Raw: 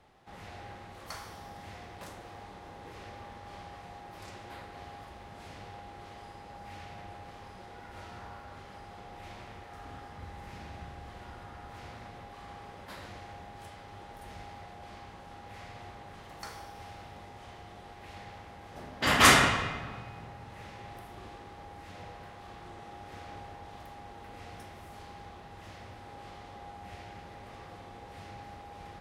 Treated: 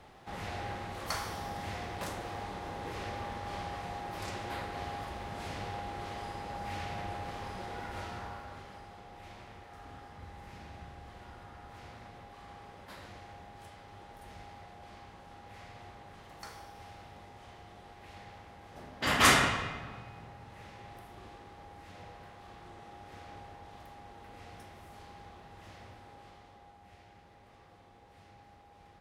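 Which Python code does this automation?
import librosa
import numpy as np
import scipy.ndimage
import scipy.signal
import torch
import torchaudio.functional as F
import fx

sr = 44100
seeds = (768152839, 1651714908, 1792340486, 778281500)

y = fx.gain(x, sr, db=fx.line((7.82, 7.0), (9.02, -3.5), (25.86, -3.5), (26.78, -11.0)))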